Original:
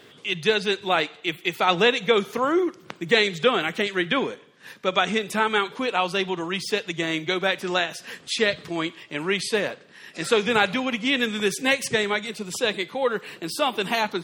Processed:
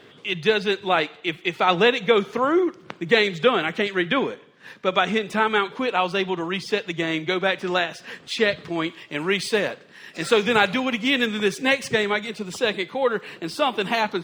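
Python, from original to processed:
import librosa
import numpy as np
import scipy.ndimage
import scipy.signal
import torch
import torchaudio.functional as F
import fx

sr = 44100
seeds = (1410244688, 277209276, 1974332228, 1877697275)

y = scipy.signal.medfilt(x, 3)
y = fx.high_shelf(y, sr, hz=5800.0, db=fx.steps((0.0, -11.0), (8.88, -2.5), (11.25, -8.5)))
y = y * 10.0 ** (2.0 / 20.0)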